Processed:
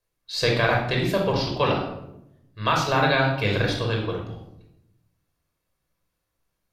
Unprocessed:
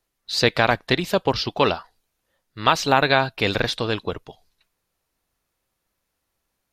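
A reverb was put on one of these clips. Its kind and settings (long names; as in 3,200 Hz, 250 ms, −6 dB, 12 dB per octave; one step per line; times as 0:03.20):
rectangular room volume 2,300 cubic metres, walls furnished, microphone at 5.4 metres
level −8 dB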